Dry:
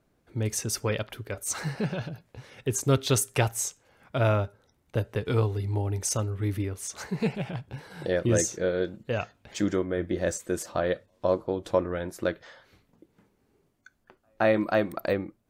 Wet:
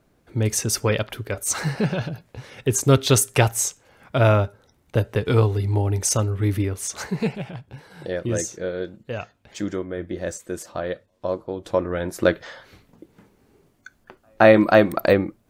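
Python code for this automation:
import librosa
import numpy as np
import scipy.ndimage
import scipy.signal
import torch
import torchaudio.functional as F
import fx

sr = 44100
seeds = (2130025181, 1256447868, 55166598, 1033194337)

y = fx.gain(x, sr, db=fx.line((7.01, 7.0), (7.54, -1.0), (11.49, -1.0), (12.29, 10.0)))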